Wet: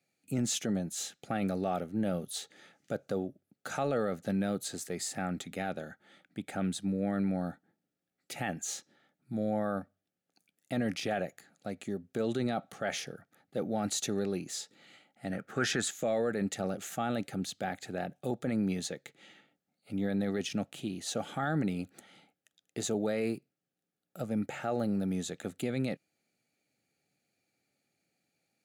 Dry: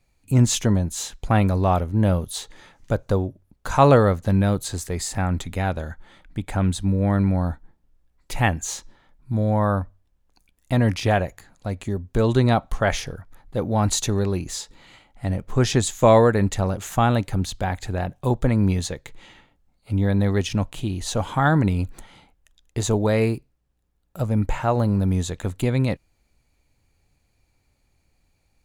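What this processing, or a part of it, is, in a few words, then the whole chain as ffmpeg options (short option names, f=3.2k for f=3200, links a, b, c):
PA system with an anti-feedback notch: -filter_complex "[0:a]highpass=f=160:w=0.5412,highpass=f=160:w=1.3066,asuperstop=centerf=1000:order=4:qfactor=3,alimiter=limit=-15.5dB:level=0:latency=1:release=13,asettb=1/sr,asplit=3[a][b][c];[a]atrim=end=15.324[d];[b]atrim=start=15.32:end=15.91,asetpts=PTS-STARTPTS,afade=t=in:d=0.004:c=qsin,afade=t=out:st=0.586:d=0.004:c=qsin,equalizer=f=1.5k:t=o:w=0.74:g=14.5[e];[c]atrim=start=15.906[f];[d][e]acrossfade=d=0.004:c1=hsin:c2=qsin[g];[g][f]acrossfade=d=0.004:c1=qsin:c2=hsin,volume=-7.5dB"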